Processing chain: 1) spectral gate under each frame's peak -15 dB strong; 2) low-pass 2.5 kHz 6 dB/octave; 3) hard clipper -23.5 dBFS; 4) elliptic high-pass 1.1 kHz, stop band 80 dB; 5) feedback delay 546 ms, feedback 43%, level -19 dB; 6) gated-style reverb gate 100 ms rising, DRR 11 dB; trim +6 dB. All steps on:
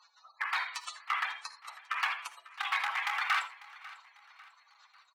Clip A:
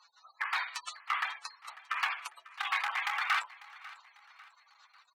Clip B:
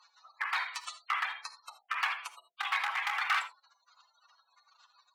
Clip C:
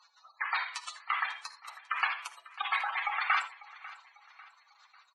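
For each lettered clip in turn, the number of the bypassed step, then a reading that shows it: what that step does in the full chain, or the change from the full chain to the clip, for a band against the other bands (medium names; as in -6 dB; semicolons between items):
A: 6, echo-to-direct -10.0 dB to -18.0 dB; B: 5, momentary loudness spread change -4 LU; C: 3, distortion -9 dB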